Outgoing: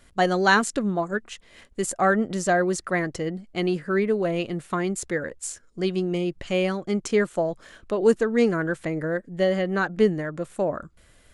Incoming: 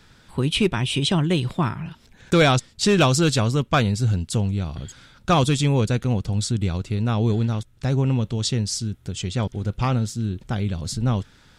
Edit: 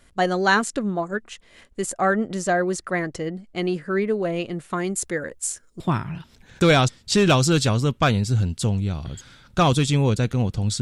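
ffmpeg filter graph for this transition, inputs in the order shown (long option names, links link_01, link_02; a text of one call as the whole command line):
ffmpeg -i cue0.wav -i cue1.wav -filter_complex "[0:a]asettb=1/sr,asplit=3[link_01][link_02][link_03];[link_01]atrim=end=4.764[link_04];[link_02]atrim=start=4.76:end=5.8,asetpts=PTS-STARTPTS,afade=type=in:duration=0.004:curve=qsin,afade=type=out:start_time=1.036:duration=0.004:curve=qsin,highshelf=frequency=7700:gain=11.5[link_05];[link_03]atrim=start=5.796[link_06];[link_04][link_05]acrossfade=duration=0.004:curve1=hsin:curve2=qsin[link_07];[link_07][link_06]acrossfade=duration=0.004:curve1=qsin:curve2=hsin,apad=whole_dur=10.81,atrim=end=10.81,atrim=end=5.802[link_08];[1:a]atrim=start=1.508:end=6.52[link_09];[link_08][link_09]acrossfade=duration=0.004:curve1=hsin:curve2=hsin" out.wav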